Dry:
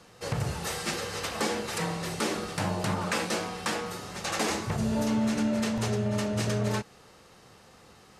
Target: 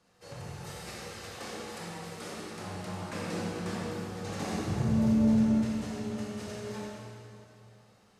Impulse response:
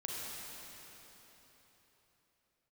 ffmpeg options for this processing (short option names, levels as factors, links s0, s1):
-filter_complex "[0:a]asettb=1/sr,asplit=3[s0][s1][s2];[s0]atrim=end=3.124[s3];[s1]atrim=start=3.12:end=5.54,asetpts=PTS-STARTPTS,afade=t=in:d=0.004:c=qsin,afade=t=out:st=2.416:d=0.004:c=qsin,equalizer=f=110:w=0.3:g=14[s4];[s2]atrim=start=5.536[s5];[s3][s4]acrossfade=d=0.004:c1=hsin:c2=qsin[s6];[s6][s5]acrossfade=d=0.004:c1=qsin:c2=hsin[s7];[1:a]atrim=start_sample=2205,asetrate=70560,aresample=44100[s8];[s7][s8]afir=irnorm=-1:irlink=0,volume=0.422"